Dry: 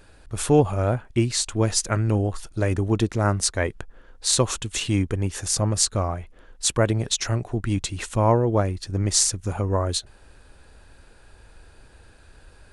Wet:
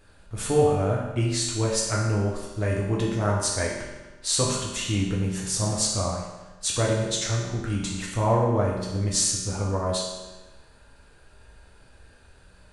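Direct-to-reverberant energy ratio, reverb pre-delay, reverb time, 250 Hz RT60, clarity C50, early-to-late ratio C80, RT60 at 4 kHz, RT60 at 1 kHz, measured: −4.0 dB, 5 ms, 1.2 s, 1.2 s, 1.5 dB, 3.5 dB, 1.1 s, 1.2 s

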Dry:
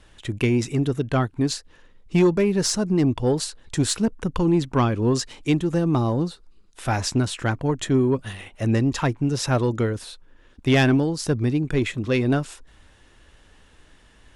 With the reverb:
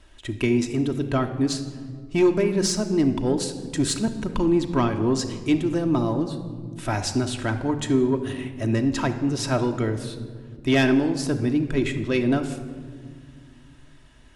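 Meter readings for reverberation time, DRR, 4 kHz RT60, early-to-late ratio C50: 1.8 s, 4.5 dB, 1.0 s, 10.0 dB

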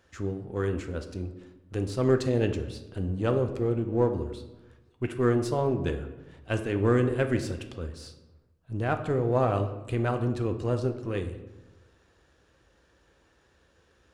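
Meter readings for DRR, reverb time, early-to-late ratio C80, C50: 6.5 dB, 1.1 s, 12.5 dB, 9.5 dB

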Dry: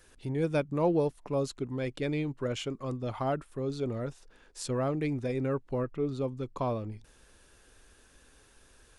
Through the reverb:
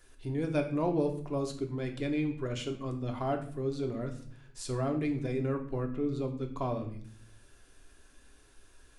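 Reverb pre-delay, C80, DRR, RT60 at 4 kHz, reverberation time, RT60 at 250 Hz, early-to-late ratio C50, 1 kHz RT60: 3 ms, 13.5 dB, 3.5 dB, 0.45 s, 0.55 s, 0.90 s, 10.5 dB, 0.45 s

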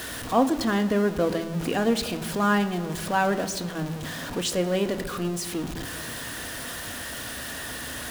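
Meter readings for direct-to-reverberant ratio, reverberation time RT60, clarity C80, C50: 8.0 dB, 1.5 s, 15.0 dB, 14.0 dB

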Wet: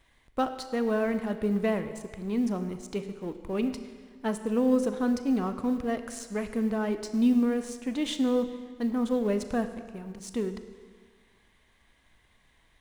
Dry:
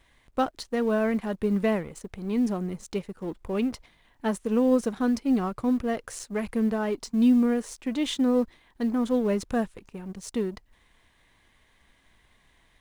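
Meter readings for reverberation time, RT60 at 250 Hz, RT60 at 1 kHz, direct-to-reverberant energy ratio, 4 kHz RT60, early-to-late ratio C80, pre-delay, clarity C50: 1.6 s, 1.6 s, 1.6 s, 9.0 dB, 1.4 s, 11.0 dB, 31 ms, 10.0 dB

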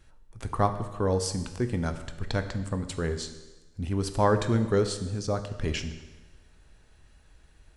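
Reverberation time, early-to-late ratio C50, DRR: 1.2 s, 10.5 dB, 8.5 dB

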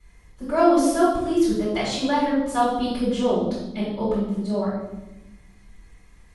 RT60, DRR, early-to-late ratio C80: 1.0 s, −11.5 dB, 4.0 dB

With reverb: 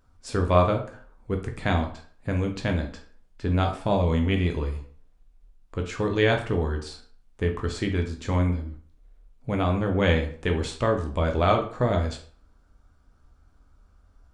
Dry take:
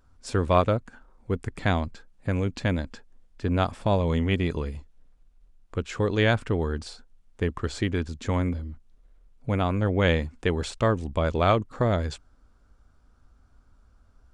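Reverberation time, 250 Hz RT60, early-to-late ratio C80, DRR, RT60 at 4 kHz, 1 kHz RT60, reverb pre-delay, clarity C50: 0.50 s, 0.45 s, 14.0 dB, 3.0 dB, 0.35 s, 0.50 s, 9 ms, 9.5 dB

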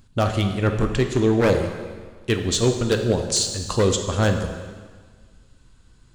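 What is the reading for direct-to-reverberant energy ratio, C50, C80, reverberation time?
4.5 dB, 6.5 dB, 8.0 dB, 1.6 s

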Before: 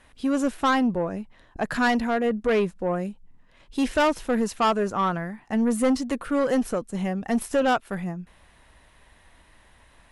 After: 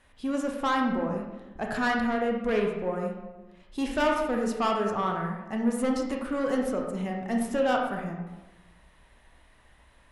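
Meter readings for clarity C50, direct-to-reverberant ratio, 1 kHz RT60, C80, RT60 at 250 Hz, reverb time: 3.0 dB, 0.5 dB, 1.1 s, 5.5 dB, 1.2 s, 1.1 s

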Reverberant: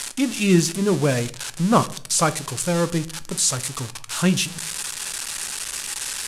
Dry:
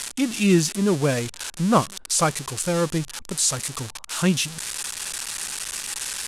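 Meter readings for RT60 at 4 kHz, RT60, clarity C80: 0.35 s, 0.55 s, 22.0 dB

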